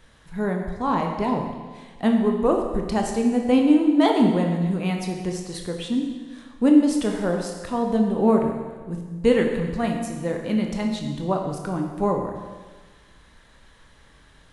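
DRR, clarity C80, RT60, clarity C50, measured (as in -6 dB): 2.0 dB, 6.0 dB, 1.4 s, 4.5 dB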